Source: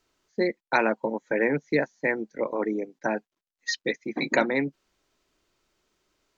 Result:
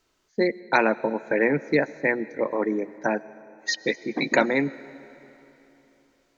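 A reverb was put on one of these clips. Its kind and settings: digital reverb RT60 3.3 s, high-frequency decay 0.85×, pre-delay 65 ms, DRR 18.5 dB; gain +2.5 dB

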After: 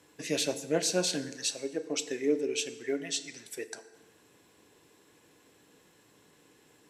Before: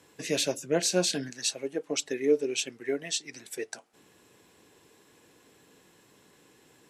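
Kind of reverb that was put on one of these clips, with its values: FDN reverb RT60 1.3 s, low-frequency decay 0.8×, high-frequency decay 0.7×, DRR 10.5 dB; gain -2.5 dB

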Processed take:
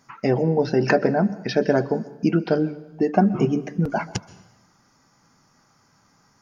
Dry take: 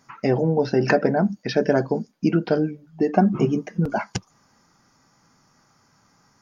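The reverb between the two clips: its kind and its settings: plate-style reverb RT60 0.99 s, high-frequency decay 0.85×, pre-delay 0.115 s, DRR 18 dB

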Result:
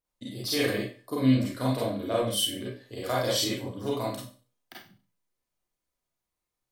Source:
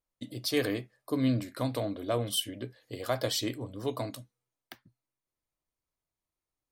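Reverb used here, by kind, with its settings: Schroeder reverb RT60 0.37 s, combs from 31 ms, DRR -6 dB; gain -2.5 dB

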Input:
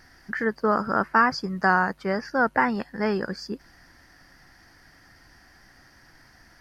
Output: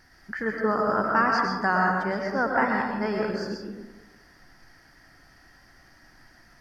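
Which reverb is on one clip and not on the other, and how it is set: digital reverb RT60 1.1 s, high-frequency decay 0.45×, pre-delay 75 ms, DRR -0.5 dB; gain -4 dB

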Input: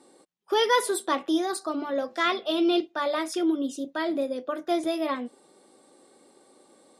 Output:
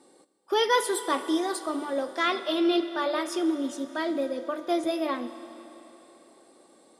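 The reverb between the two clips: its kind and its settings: Schroeder reverb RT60 3.6 s, combs from 26 ms, DRR 11 dB; gain -1 dB

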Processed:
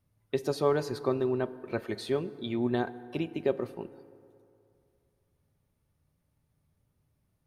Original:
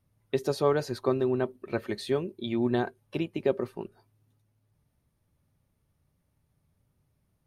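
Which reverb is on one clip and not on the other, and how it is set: FDN reverb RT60 2.7 s, low-frequency decay 0.8×, high-frequency decay 0.45×, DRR 14.5 dB; gain -2 dB

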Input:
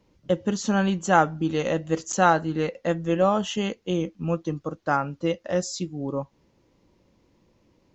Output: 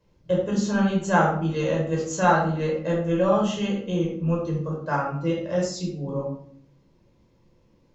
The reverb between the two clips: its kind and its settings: shoebox room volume 860 m³, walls furnished, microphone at 5.2 m; gain -7.5 dB

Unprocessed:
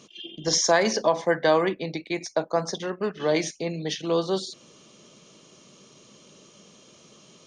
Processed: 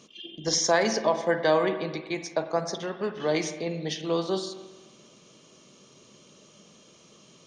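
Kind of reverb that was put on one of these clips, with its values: spring tank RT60 1.3 s, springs 45/53 ms, chirp 55 ms, DRR 8.5 dB; gain -2.5 dB

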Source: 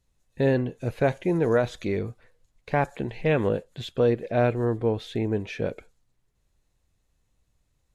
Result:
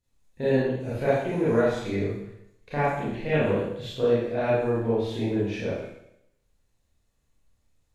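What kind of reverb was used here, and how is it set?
Schroeder reverb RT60 0.77 s, combs from 27 ms, DRR -9.5 dB; gain -9.5 dB

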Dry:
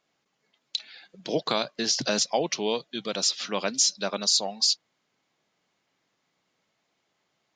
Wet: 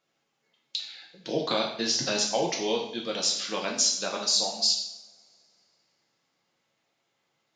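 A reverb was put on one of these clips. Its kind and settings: two-slope reverb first 0.66 s, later 2.6 s, from -26 dB, DRR -1 dB; gain -4 dB

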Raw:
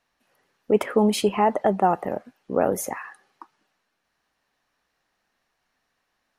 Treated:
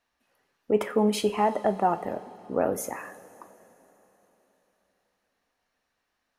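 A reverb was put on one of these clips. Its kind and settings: two-slope reverb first 0.31 s, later 3.9 s, from -18 dB, DRR 8 dB; gain -4.5 dB

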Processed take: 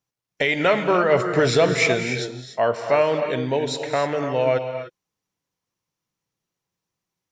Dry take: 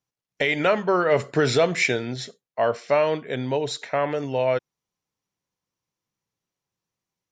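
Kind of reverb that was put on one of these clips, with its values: non-linear reverb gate 0.32 s rising, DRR 6.5 dB; gain +1.5 dB

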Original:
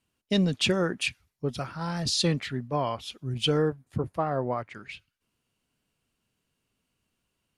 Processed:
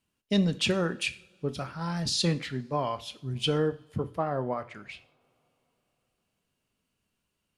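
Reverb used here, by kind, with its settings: two-slope reverb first 0.45 s, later 3.9 s, from -28 dB, DRR 11 dB; gain -2 dB

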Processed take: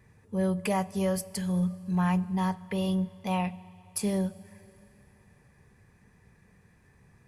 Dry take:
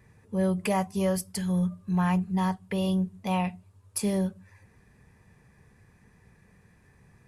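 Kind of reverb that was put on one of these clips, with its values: Schroeder reverb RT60 3.3 s, combs from 30 ms, DRR 19.5 dB; gain -1.5 dB

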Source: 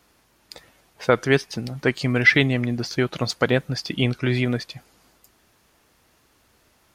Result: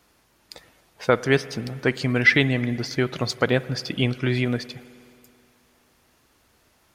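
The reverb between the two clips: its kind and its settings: spring tank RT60 2.5 s, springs 53 ms, chirp 70 ms, DRR 16.5 dB; gain -1 dB

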